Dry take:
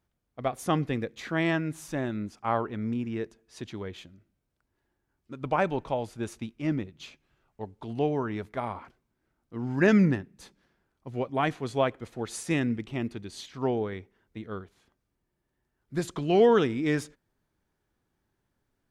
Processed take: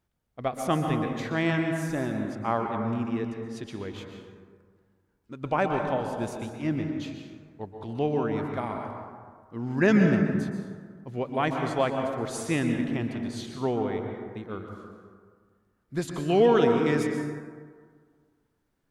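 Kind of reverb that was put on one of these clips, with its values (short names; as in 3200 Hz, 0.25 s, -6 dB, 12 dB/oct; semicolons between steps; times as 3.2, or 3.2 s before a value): plate-style reverb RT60 1.8 s, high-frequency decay 0.4×, pre-delay 0.11 s, DRR 3.5 dB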